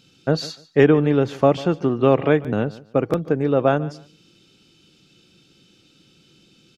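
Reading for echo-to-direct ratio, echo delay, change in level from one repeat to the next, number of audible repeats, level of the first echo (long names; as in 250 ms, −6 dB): −19.0 dB, 146 ms, −13.5 dB, 2, −19.0 dB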